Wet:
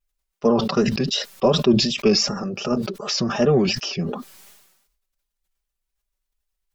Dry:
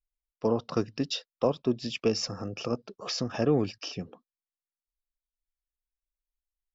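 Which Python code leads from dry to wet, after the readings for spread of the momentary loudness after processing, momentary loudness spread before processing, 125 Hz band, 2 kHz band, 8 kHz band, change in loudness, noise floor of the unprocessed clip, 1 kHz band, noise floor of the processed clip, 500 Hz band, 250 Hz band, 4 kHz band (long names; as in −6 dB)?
8 LU, 10 LU, +9.0 dB, +11.0 dB, can't be measured, +9.5 dB, below −85 dBFS, +9.5 dB, −81 dBFS, +8.5 dB, +10.0 dB, +12.0 dB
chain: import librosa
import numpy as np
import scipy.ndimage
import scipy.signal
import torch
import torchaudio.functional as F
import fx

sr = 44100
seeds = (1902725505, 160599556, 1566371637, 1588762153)

y = x + 0.96 * np.pad(x, (int(5.1 * sr / 1000.0), 0))[:len(x)]
y = fx.vibrato(y, sr, rate_hz=2.7, depth_cents=85.0)
y = fx.sustainer(y, sr, db_per_s=54.0)
y = y * 10.0 ** (5.5 / 20.0)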